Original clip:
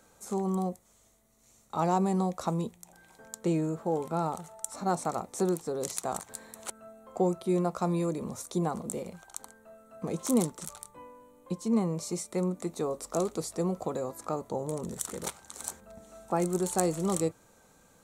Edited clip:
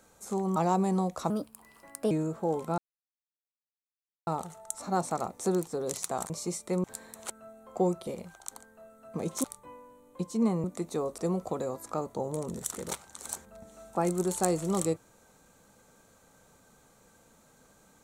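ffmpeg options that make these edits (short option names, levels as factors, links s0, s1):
-filter_complex "[0:a]asplit=11[s0][s1][s2][s3][s4][s5][s6][s7][s8][s9][s10];[s0]atrim=end=0.562[s11];[s1]atrim=start=1.778:end=2.524[s12];[s2]atrim=start=2.52:end=3.54,asetpts=PTS-STARTPTS,asetrate=55566,aresample=44100[s13];[s3]atrim=start=3.536:end=4.21,asetpts=PTS-STARTPTS,afade=t=out:st=0.67:d=0.004:c=hsin,apad=pad_dur=1.49[s14];[s4]atrim=start=4.21:end=6.242,asetpts=PTS-STARTPTS,afade=t=in:d=0.004:c=hsin[s15];[s5]atrim=start=11.948:end=12.492[s16];[s6]atrim=start=6.238:end=7.472[s17];[s7]atrim=start=8.948:end=10.322[s18];[s8]atrim=start=10.748:end=11.952[s19];[s9]atrim=start=12.488:end=13.032[s20];[s10]atrim=start=13.528[s21];[s11][s12]acrossfade=d=0.004:c1=hsin:c2=hsin[s22];[s22][s13]acrossfade=d=0.004:c1=hsin:c2=hsin[s23];[s14][s15]concat=n=2:v=0:a=1[s24];[s23][s24]acrossfade=d=0.004:c1=hsin:c2=hsin[s25];[s25][s16]acrossfade=d=0.004:c1=hsin:c2=hsin[s26];[s26][s17]acrossfade=d=0.004:c1=hsin:c2=hsin[s27];[s27][s18]acrossfade=d=0.004:c1=hsin:c2=hsin[s28];[s28][s19]acrossfade=d=0.004:c1=hsin:c2=hsin[s29];[s29][s20]acrossfade=d=0.004:c1=hsin:c2=hsin[s30];[s30][s21]acrossfade=d=0.004:c1=hsin:c2=hsin"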